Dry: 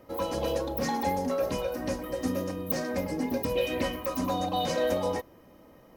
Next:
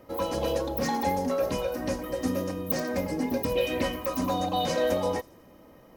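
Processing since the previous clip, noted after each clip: thin delay 85 ms, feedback 52%, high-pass 4700 Hz, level -18 dB; gain +1.5 dB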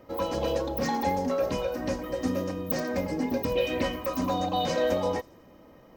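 bell 11000 Hz -14 dB 0.55 oct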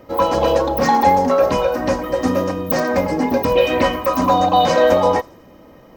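dynamic EQ 1000 Hz, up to +8 dB, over -42 dBFS, Q 0.82; gain +8.5 dB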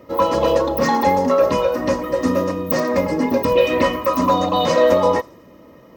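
notch comb 770 Hz

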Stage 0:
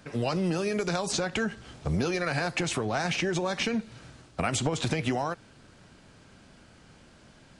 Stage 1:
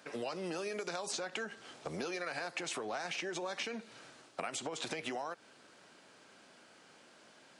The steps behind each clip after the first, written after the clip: HPF 370 Hz 12 dB/oct; compressor, threshold -34 dBFS, peak gain reduction 9.5 dB; gain -2 dB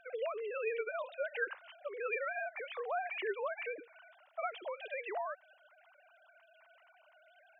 sine-wave speech; gain +1 dB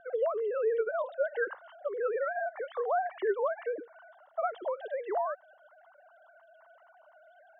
running mean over 18 samples; gain +9 dB

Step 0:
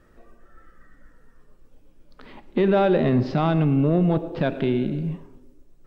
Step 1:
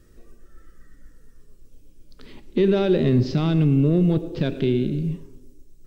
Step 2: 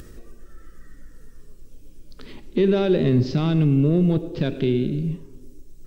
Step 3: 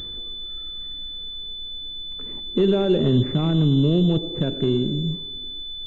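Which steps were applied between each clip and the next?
EQ curve 100 Hz 0 dB, 220 Hz -5 dB, 410 Hz -3 dB, 720 Hz -16 dB, 1700 Hz -10 dB, 6000 Hz +4 dB; gain +5 dB
upward compressor, threshold -31 dBFS
pulse-width modulation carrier 3500 Hz

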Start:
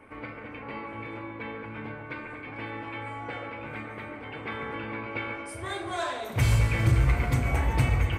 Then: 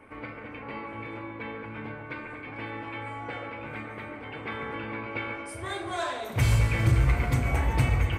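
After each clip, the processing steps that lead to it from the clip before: nothing audible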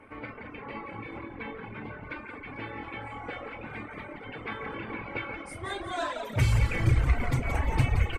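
high shelf 10000 Hz -9 dB; frequency-shifting echo 0.174 s, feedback 52%, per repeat -43 Hz, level -6 dB; reverb removal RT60 1.3 s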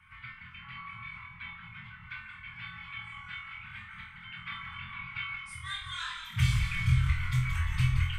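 inverse Chebyshev band-stop 290–660 Hz, stop band 50 dB; bell 3300 Hz +8 dB 0.35 oct; on a send: flutter echo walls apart 4.1 m, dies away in 0.42 s; on the sum: gain -4 dB

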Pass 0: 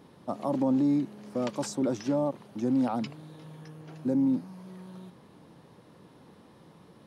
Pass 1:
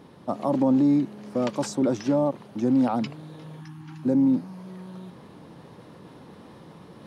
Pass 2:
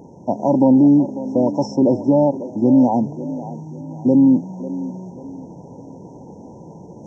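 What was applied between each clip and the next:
spectral delete 3.6–4.04, 350–770 Hz; high shelf 6400 Hz -5 dB; reverse; upward compressor, threshold -45 dBFS; reverse; gain +5 dB
nonlinear frequency compression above 2300 Hz 1.5:1; brick-wall FIR band-stop 1000–5200 Hz; band-limited delay 0.545 s, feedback 37%, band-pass 490 Hz, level -13 dB; gain +8 dB

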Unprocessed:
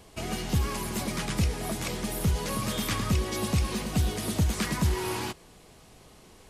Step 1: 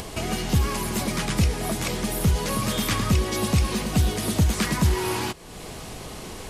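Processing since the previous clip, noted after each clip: upward compressor, threshold -30 dBFS; gain +5 dB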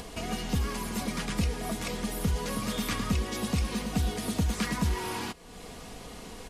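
high shelf 9100 Hz -4 dB; comb 4.2 ms, depth 43%; gain -7 dB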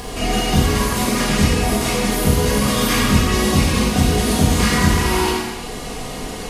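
non-linear reverb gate 0.44 s falling, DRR -7.5 dB; gain +7 dB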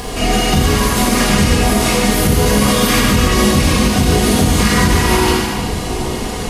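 limiter -8.5 dBFS, peak gain reduction 7 dB; split-band echo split 910 Hz, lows 0.784 s, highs 0.144 s, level -9 dB; gain +5 dB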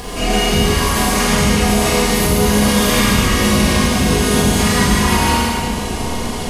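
Schroeder reverb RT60 1.5 s, combs from 30 ms, DRR 0.5 dB; gain -3.5 dB

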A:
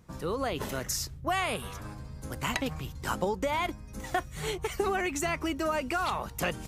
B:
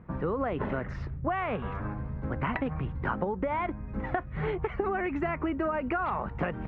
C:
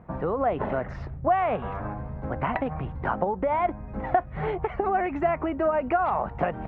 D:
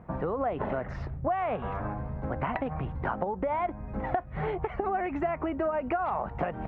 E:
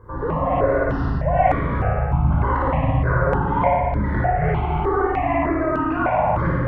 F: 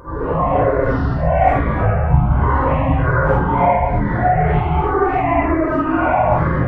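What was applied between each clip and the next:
LPF 2000 Hz 24 dB/oct; bell 200 Hz +2.5 dB; compressor, threshold -33 dBFS, peak gain reduction 10 dB; gain +6.5 dB
bell 710 Hz +10.5 dB 0.79 oct
compressor 2.5:1, threshold -28 dBFS, peak gain reduction 8 dB
on a send: flutter echo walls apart 9.7 m, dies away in 0.83 s; on the sum: shoebox room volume 2100 m³, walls mixed, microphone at 5.2 m; step phaser 3.3 Hz 670–2700 Hz; gain +3 dB
phase scrambler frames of 0.2 s; gain +4 dB

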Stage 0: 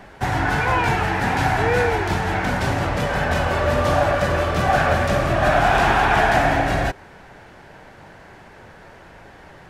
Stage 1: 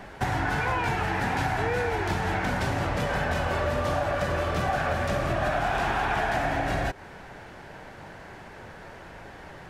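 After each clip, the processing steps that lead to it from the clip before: compressor 5:1, threshold -24 dBFS, peak gain reduction 10.5 dB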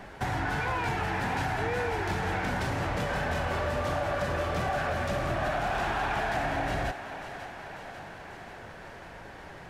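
soft clip -20 dBFS, distortion -19 dB; thinning echo 0.542 s, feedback 68%, high-pass 330 Hz, level -11 dB; gain -2 dB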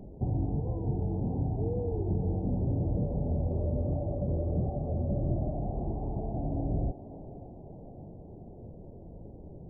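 Gaussian blur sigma 19 samples; gain +5 dB

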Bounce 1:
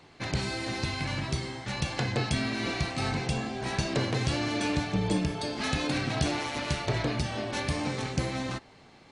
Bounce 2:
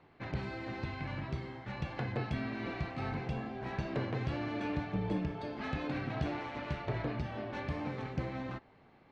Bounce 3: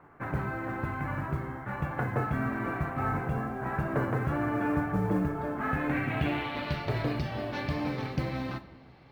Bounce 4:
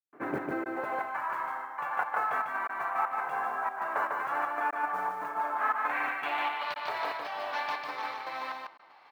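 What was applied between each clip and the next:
LPF 2100 Hz 12 dB/oct; gain -6.5 dB
low-pass sweep 1400 Hz -> 5100 Hz, 5.64–6.82; modulation noise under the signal 34 dB; shoebox room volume 600 m³, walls mixed, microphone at 0.34 m; gain +4.5 dB
step gate ".xx.x.xx.xxxx.xx" 118 bpm -60 dB; high-pass sweep 320 Hz -> 930 Hz, 0.51–1.15; on a send: echo 0.149 s -3 dB

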